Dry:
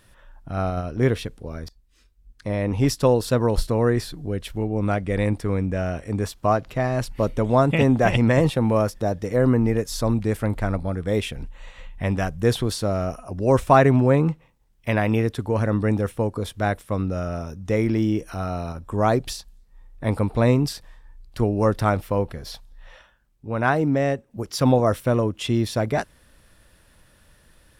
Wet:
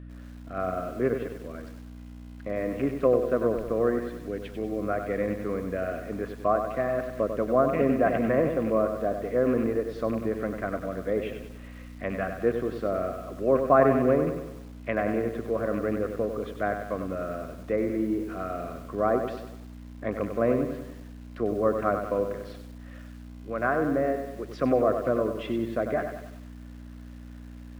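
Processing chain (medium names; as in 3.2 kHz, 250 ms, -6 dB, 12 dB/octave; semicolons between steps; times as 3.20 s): rattle on loud lows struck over -19 dBFS, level -21 dBFS; low-pass that closes with the level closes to 1.5 kHz, closed at -17 dBFS; three-band isolator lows -15 dB, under 200 Hz, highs -24 dB, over 2.5 kHz; hum 60 Hz, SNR 11 dB; Butterworth band-stop 880 Hz, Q 3.1; bass shelf 290 Hz -5.5 dB; bit-crushed delay 96 ms, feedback 55%, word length 8-bit, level -7 dB; trim -1.5 dB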